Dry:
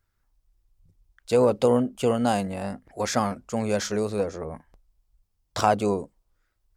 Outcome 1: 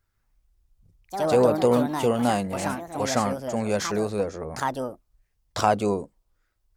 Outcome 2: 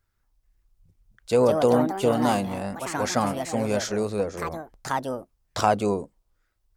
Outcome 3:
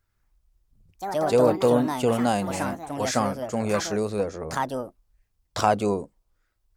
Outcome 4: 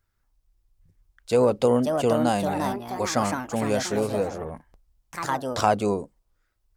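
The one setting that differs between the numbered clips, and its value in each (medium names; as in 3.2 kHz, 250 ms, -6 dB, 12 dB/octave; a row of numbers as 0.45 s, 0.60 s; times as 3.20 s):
ever faster or slower copies, time: 149 ms, 435 ms, 95 ms, 813 ms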